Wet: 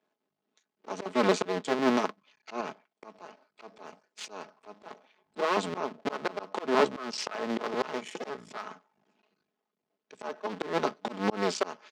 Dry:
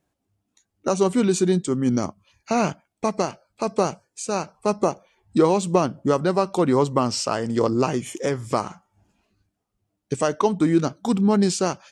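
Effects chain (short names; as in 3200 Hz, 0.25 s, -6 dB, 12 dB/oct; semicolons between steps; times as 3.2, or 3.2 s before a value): cycle switcher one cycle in 2, muted; HPF 120 Hz 12 dB/oct; three-band isolator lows -21 dB, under 220 Hz, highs -24 dB, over 5500 Hz; comb 4.7 ms, depth 49%; 2.6–4.91 compressor 12:1, threshold -26 dBFS, peak gain reduction 10 dB; dynamic EQ 1100 Hz, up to +3 dB, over -33 dBFS, Q 1.3; auto swell 0.263 s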